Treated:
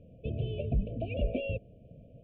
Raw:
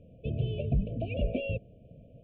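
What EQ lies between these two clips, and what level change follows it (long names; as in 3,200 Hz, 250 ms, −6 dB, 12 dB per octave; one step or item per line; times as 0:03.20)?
dynamic equaliser 150 Hz, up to −5 dB, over −41 dBFS, Q 1.6
high-frequency loss of the air 98 metres
0.0 dB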